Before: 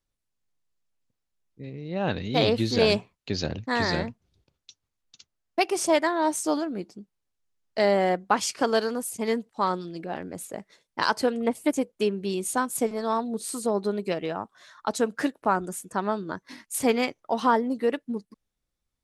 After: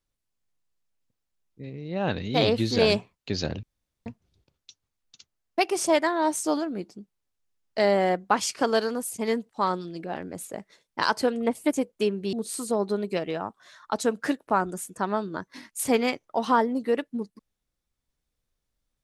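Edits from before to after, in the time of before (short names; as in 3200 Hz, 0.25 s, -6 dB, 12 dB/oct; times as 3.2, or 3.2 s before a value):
3.63–4.06 room tone
12.33–13.28 cut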